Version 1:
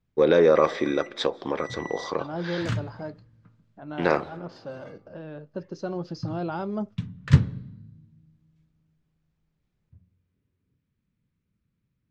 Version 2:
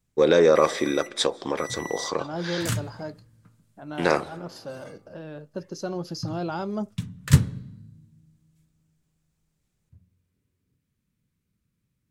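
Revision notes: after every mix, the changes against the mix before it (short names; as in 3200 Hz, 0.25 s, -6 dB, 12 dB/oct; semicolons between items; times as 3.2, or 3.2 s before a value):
master: remove air absorption 190 m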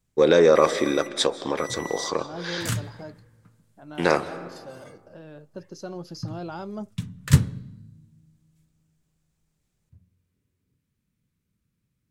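first voice: send +9.5 dB; second voice -5.0 dB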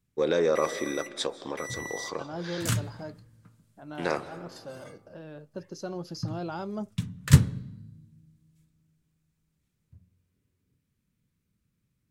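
first voice -8.5 dB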